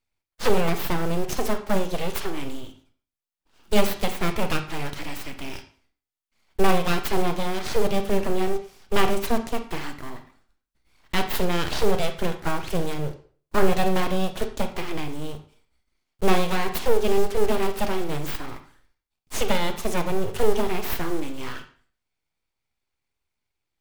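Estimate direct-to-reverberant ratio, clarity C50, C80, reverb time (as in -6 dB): 7.5 dB, 11.0 dB, 14.5 dB, 0.45 s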